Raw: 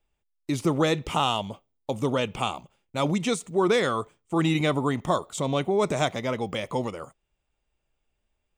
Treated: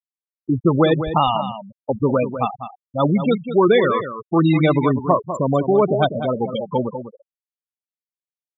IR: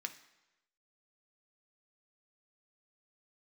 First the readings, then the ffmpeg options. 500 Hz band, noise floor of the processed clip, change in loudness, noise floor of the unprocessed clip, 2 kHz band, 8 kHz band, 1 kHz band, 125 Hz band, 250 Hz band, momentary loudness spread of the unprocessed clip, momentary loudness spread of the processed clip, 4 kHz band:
+8.0 dB, under -85 dBFS, +7.5 dB, -78 dBFS, +3.0 dB, under -15 dB, +7.0 dB, +8.0 dB, +8.0 dB, 12 LU, 12 LU, 0.0 dB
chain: -filter_complex "[0:a]afftfilt=real='re*gte(hypot(re,im),0.126)':imag='im*gte(hypot(re,im),0.126)':win_size=1024:overlap=0.75,asplit=2[s0][s1];[s1]adelay=198.3,volume=0.316,highshelf=f=4000:g=-4.46[s2];[s0][s2]amix=inputs=2:normalize=0,volume=2.51"

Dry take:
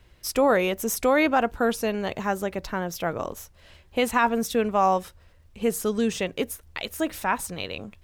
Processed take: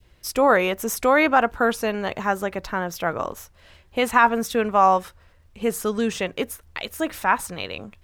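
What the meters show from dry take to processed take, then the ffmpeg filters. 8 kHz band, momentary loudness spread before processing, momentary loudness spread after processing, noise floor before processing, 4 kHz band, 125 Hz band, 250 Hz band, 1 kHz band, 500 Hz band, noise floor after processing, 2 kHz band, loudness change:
0.0 dB, 11 LU, 13 LU, -55 dBFS, +1.5 dB, 0.0 dB, +0.5 dB, +5.0 dB, +2.0 dB, -55 dBFS, +5.0 dB, +3.5 dB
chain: -af "adynamicequalizer=threshold=0.0178:dfrequency=1300:dqfactor=0.76:tfrequency=1300:tqfactor=0.76:attack=5:release=100:ratio=0.375:range=3.5:mode=boostabove:tftype=bell"

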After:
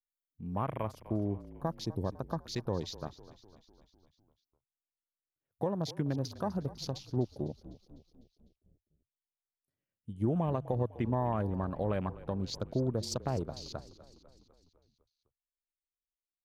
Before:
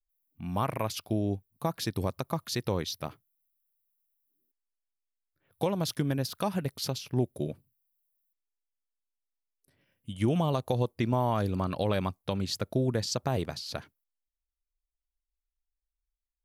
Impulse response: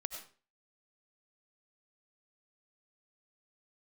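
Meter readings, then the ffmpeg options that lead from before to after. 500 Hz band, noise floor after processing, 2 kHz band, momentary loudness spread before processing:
-4.0 dB, under -85 dBFS, -9.0 dB, 9 LU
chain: -filter_complex "[0:a]afwtdn=0.00891,equalizer=f=2500:t=o:w=1.9:g=-4.5,asplit=7[s0][s1][s2][s3][s4][s5][s6];[s1]adelay=251,afreqshift=-35,volume=0.141[s7];[s2]adelay=502,afreqshift=-70,volume=0.0851[s8];[s3]adelay=753,afreqshift=-105,volume=0.0507[s9];[s4]adelay=1004,afreqshift=-140,volume=0.0305[s10];[s5]adelay=1255,afreqshift=-175,volume=0.0184[s11];[s6]adelay=1506,afreqshift=-210,volume=0.011[s12];[s0][s7][s8][s9][s10][s11][s12]amix=inputs=7:normalize=0,volume=0.668"

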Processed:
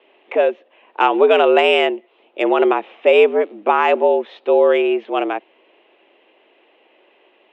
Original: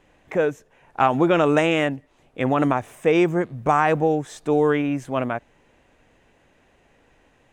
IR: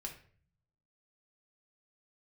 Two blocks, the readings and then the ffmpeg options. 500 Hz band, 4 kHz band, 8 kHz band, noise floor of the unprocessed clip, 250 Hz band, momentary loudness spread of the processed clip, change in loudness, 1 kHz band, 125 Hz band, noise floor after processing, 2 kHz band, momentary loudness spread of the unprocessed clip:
+7.5 dB, +9.5 dB, under -10 dB, -60 dBFS, -1.5 dB, 9 LU, +5.5 dB, +4.5 dB, under -25 dB, -57 dBFS, +5.0 dB, 9 LU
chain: -af "aemphasis=mode=reproduction:type=riaa,highpass=f=260:t=q:w=0.5412,highpass=f=260:t=q:w=1.307,lowpass=f=3200:t=q:w=0.5176,lowpass=f=3200:t=q:w=0.7071,lowpass=f=3200:t=q:w=1.932,afreqshift=89,aexciter=amount=3.9:drive=7.5:freq=2500,volume=1.33"

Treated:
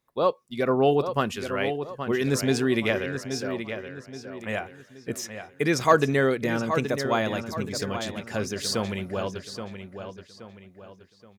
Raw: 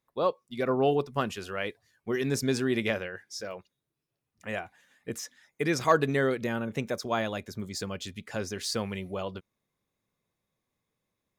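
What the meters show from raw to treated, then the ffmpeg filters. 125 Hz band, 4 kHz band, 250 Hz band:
+4.5 dB, +4.5 dB, +4.5 dB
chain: -filter_complex "[0:a]asplit=2[s0][s1];[s1]adelay=825,lowpass=f=4900:p=1,volume=0.376,asplit=2[s2][s3];[s3]adelay=825,lowpass=f=4900:p=1,volume=0.39,asplit=2[s4][s5];[s5]adelay=825,lowpass=f=4900:p=1,volume=0.39,asplit=2[s6][s7];[s7]adelay=825,lowpass=f=4900:p=1,volume=0.39[s8];[s0][s2][s4][s6][s8]amix=inputs=5:normalize=0,volume=1.58"

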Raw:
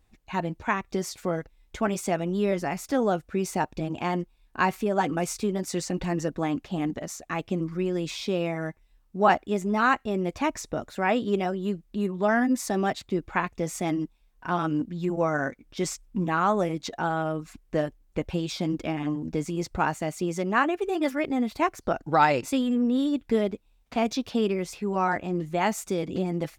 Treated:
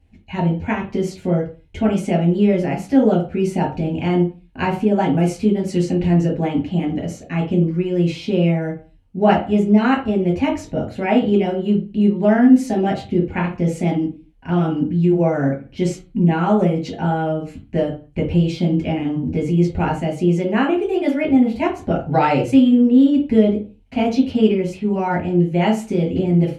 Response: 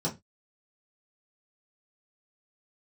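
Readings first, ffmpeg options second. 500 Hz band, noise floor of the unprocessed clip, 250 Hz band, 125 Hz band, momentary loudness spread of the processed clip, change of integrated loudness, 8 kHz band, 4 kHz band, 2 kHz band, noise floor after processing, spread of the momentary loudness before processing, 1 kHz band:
+8.0 dB, -63 dBFS, +11.5 dB, +13.5 dB, 9 LU, +9.0 dB, no reading, +4.0 dB, +1.5 dB, -48 dBFS, 8 LU, +3.0 dB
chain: -filter_complex "[1:a]atrim=start_sample=2205,asetrate=23814,aresample=44100[s0];[0:a][s0]afir=irnorm=-1:irlink=0,volume=0.501"

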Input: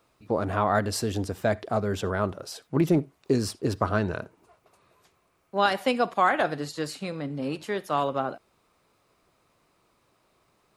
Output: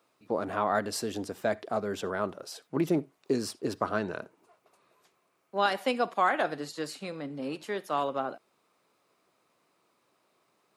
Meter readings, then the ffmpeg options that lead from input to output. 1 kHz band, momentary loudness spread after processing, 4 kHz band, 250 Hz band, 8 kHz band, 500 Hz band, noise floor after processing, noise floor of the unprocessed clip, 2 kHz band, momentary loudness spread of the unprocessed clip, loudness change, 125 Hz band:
-3.5 dB, 10 LU, -3.5 dB, -5.0 dB, -3.5 dB, -3.5 dB, -73 dBFS, -68 dBFS, -3.5 dB, 10 LU, -4.0 dB, -11.5 dB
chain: -af "highpass=200,volume=0.668"

